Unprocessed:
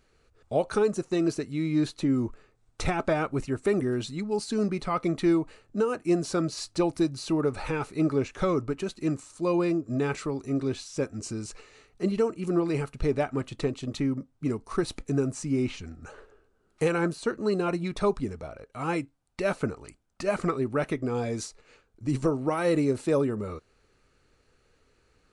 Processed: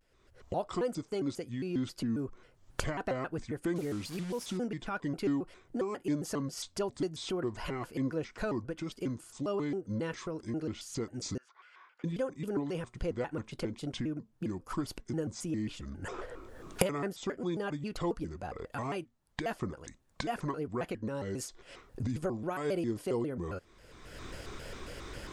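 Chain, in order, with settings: 3.75–4.57 delta modulation 64 kbps, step -36 dBFS; recorder AGC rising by 32 dB/s; 11.37–12.05 ladder band-pass 1400 Hz, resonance 55%; shaped vibrato square 3.7 Hz, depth 250 cents; gain -8.5 dB

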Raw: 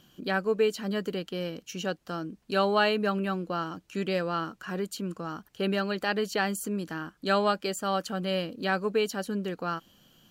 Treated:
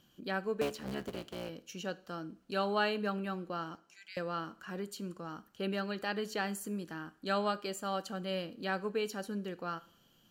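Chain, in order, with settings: 0.61–1.49 cycle switcher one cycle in 3, muted; 3.75–4.17 rippled Chebyshev high-pass 1500 Hz, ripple 9 dB; two-slope reverb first 0.5 s, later 2.8 s, from -27 dB, DRR 14 dB; gain -7.5 dB

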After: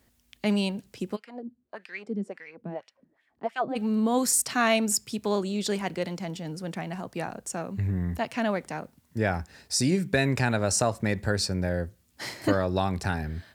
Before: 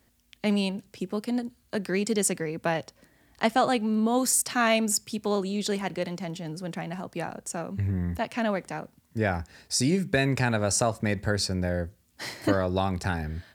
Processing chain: 1.15–3.75 LFO band-pass sine 1.1 Hz -> 3.9 Hz 200–2800 Hz

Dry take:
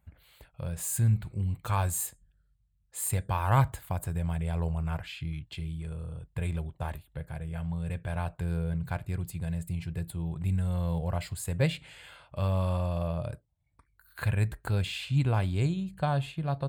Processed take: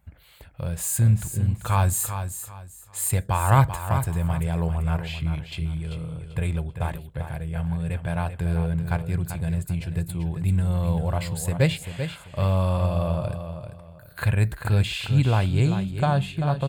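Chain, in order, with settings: feedback echo 0.39 s, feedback 27%, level -9 dB; gain +6 dB

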